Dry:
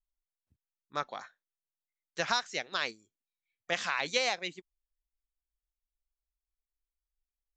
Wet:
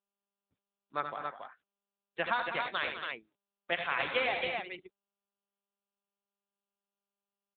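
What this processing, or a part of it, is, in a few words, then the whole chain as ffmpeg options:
mobile call with aggressive noise cancelling: -filter_complex "[0:a]asplit=3[a][b][c];[a]afade=t=out:st=1.13:d=0.02[d];[b]highpass=f=110:p=1,afade=t=in:st=1.13:d=0.02,afade=t=out:st=2.46:d=0.02[e];[c]afade=t=in:st=2.46:d=0.02[f];[d][e][f]amix=inputs=3:normalize=0,highpass=f=120:p=1,aecho=1:1:77|90|110|201|272|275:0.398|0.251|0.112|0.316|0.119|0.562,afftdn=nr=33:nf=-55" -ar 8000 -c:a libopencore_amrnb -b:a 10200

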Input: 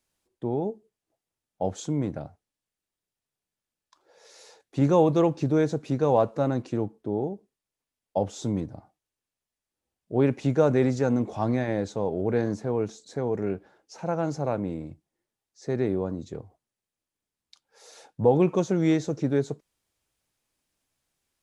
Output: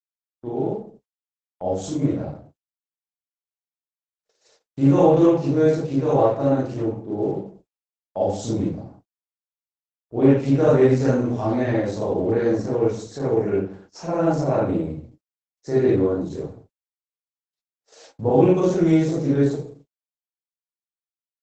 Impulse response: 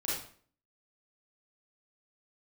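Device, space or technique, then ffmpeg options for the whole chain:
speakerphone in a meeting room: -filter_complex "[0:a]asettb=1/sr,asplit=3[a][b][c];[a]atrim=end=14.214[d];[b]atrim=start=14.21:end=14.85,asetpts=PTS-STARTPTS,afade=t=in:d=0.004:c=qsin,afade=t=out:st=0.636:d=0.004:c=qsin,highshelf=f=2.5k:g=-2.5[e];[c]atrim=start=14.846[f];[d][e]acrossfade=d=0.004:c1=hsin:c2=qsin[g];[g][f]acrossfade=d=0.004:c1=qsin:c2=hsin[h];[1:a]atrim=start_sample=2205[i];[h][i]afir=irnorm=-1:irlink=0,asplit=2[j][k];[k]adelay=80,highpass=300,lowpass=3.4k,asoftclip=type=hard:threshold=-12dB,volume=-21dB[l];[j][l]amix=inputs=2:normalize=0,dynaudnorm=f=840:g=5:m=6dB,agate=range=-50dB:threshold=-43dB:ratio=16:detection=peak,volume=-2.5dB" -ar 48000 -c:a libopus -b:a 12k

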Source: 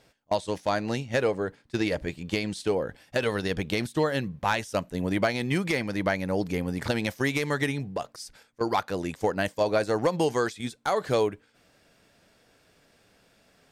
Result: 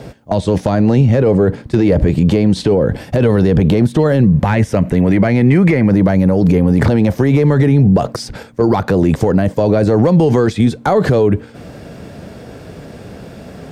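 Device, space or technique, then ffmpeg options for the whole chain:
mastering chain: -filter_complex "[0:a]asettb=1/sr,asplit=3[a][b][c];[a]atrim=end=4.474[d];[b]atrim=start=4.47:end=5.91,asetpts=PTS-STARTPTS,afade=t=in:d=0.004:c=qsin,afade=t=out:st=1.436:d=0.004:c=qsin,equalizer=f=2.1k:t=o:w=0.86:g=12[e];[c]atrim=start=5.906[f];[d][e]acrossfade=d=0.004:c1=hsin:c2=qsin[g];[g][f]acrossfade=d=0.004:c1=qsin:c2=hsin,highpass=56,equalizer=f=300:t=o:w=0.42:g=-2.5,acrossover=split=310|1600|5100[h][i][j][k];[h]acompressor=threshold=-32dB:ratio=4[l];[i]acompressor=threshold=-29dB:ratio=4[m];[j]acompressor=threshold=-38dB:ratio=4[n];[k]acompressor=threshold=-53dB:ratio=4[o];[l][m][n][o]amix=inputs=4:normalize=0,acompressor=threshold=-30dB:ratio=6,asoftclip=type=tanh:threshold=-21.5dB,tiltshelf=f=780:g=9.5,alimiter=level_in=29.5dB:limit=-1dB:release=50:level=0:latency=1,volume=-3dB"

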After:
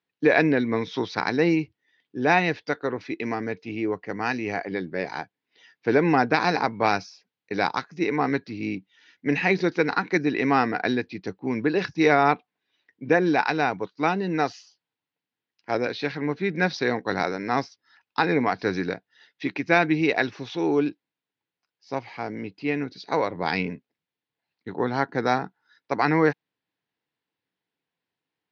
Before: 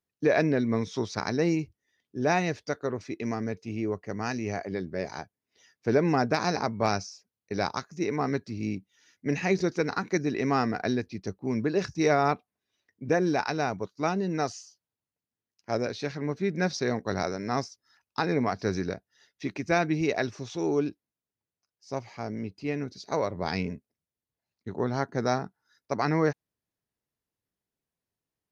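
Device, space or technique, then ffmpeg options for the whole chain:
kitchen radio: -af "highpass=220,equalizer=f=220:t=q:w=4:g=-7,equalizer=f=390:t=q:w=4:g=-6,equalizer=f=610:t=q:w=4:g=-9,equalizer=f=1.2k:t=q:w=4:g=-5,lowpass=f=4k:w=0.5412,lowpass=f=4k:w=1.3066,volume=9dB"

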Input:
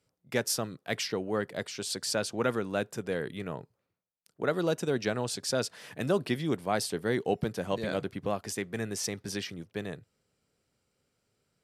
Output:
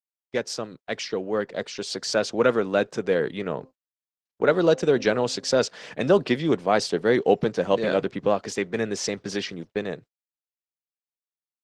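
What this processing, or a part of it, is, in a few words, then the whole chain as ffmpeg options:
video call: -filter_complex "[0:a]asplit=3[a][b][c];[a]afade=t=out:st=3.51:d=0.02[d];[b]bandreject=f=261:t=h:w=4,bandreject=f=522:t=h:w=4,bandreject=f=783:t=h:w=4,bandreject=f=1.044k:t=h:w=4,afade=t=in:st=3.51:d=0.02,afade=t=out:st=5.51:d=0.02[e];[c]afade=t=in:st=5.51:d=0.02[f];[d][e][f]amix=inputs=3:normalize=0,highpass=160,lowpass=f=6.7k:w=0.5412,lowpass=f=6.7k:w=1.3066,equalizer=f=500:w=2.5:g=3.5,dynaudnorm=f=510:g=7:m=6.5dB,agate=range=-52dB:threshold=-42dB:ratio=16:detection=peak,volume=1.5dB" -ar 48000 -c:a libopus -b:a 16k

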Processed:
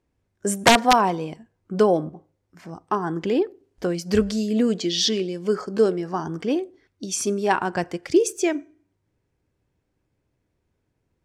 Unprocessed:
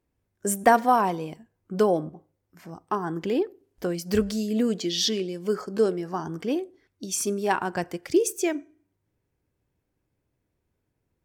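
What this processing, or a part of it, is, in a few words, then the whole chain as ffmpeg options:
overflowing digital effects unit: -af "aeval=exprs='(mod(2.82*val(0)+1,2)-1)/2.82':c=same,lowpass=8.1k,volume=3.5dB"

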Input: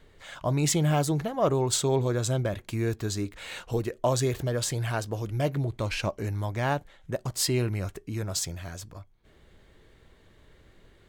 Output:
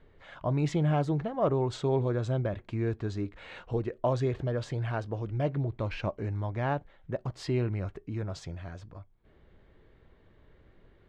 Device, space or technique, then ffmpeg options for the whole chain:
phone in a pocket: -af "lowpass=3.9k,highshelf=f=2.5k:g=-10,volume=-2dB"

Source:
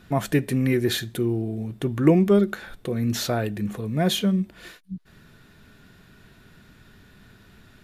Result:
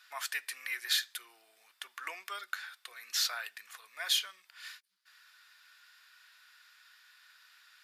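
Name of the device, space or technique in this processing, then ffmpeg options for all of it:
headphones lying on a table: -af "highpass=f=1.2k:w=0.5412,highpass=f=1.2k:w=1.3066,equalizer=f=4.9k:t=o:w=0.32:g=7,volume=-3dB"

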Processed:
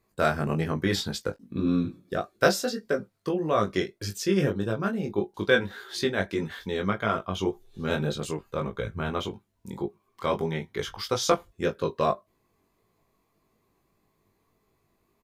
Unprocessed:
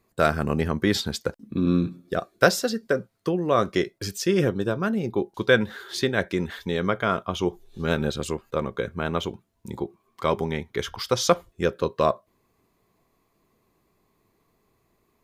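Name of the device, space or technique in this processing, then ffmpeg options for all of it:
double-tracked vocal: -filter_complex "[0:a]asplit=2[a][b];[b]adelay=20,volume=-13dB[c];[a][c]amix=inputs=2:normalize=0,flanger=delay=18.5:depth=2.8:speed=1.7,asettb=1/sr,asplit=3[d][e][f];[d]atrim=end=8.284[g];[e]atrim=start=8.28:end=9.11,asetpts=PTS-STARTPTS,afade=t=in:d=0.004:c=qsin,afade=t=out:st=0.826:d=0.004:c=qsin,asubboost=boost=9.5:cutoff=150[h];[f]atrim=start=9.106[i];[g][h]acrossfade=d=0.004:c1=hsin:c2=qsin[j];[j][i]acrossfade=d=0.004:c1=qsin:c2=hsin"

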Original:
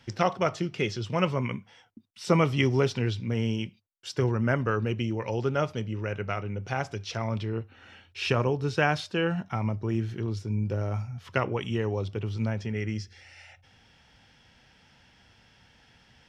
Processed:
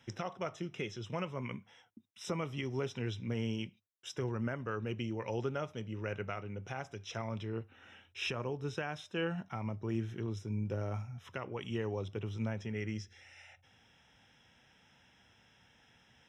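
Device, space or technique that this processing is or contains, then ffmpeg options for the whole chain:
PA system with an anti-feedback notch: -af "highpass=f=100:p=1,asuperstop=centerf=4500:order=8:qfactor=4.8,alimiter=limit=-19.5dB:level=0:latency=1:release=447,volume=-5.5dB"

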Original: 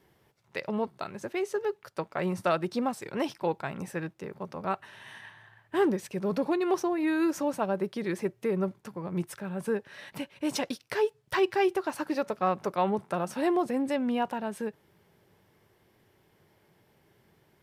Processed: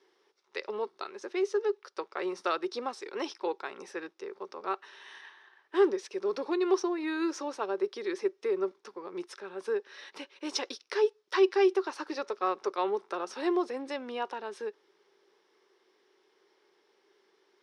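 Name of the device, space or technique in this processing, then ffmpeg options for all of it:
phone speaker on a table: -af "highpass=f=350:w=0.5412,highpass=f=350:w=1.3066,equalizer=f=390:t=q:w=4:g=8,equalizer=f=640:t=q:w=4:g=-8,equalizer=f=1.2k:t=q:w=4:g=4,equalizer=f=3.8k:t=q:w=4:g=5,equalizer=f=5.4k:t=q:w=4:g=8,equalizer=f=7.7k:t=q:w=4:g=-7,lowpass=f=8.2k:w=0.5412,lowpass=f=8.2k:w=1.3066,volume=-3dB"

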